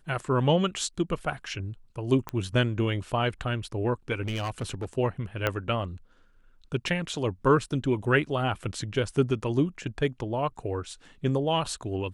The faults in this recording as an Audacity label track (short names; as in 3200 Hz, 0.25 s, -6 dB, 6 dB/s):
2.290000	2.290000	pop -17 dBFS
4.220000	4.930000	clipped -27 dBFS
5.470000	5.470000	pop -11 dBFS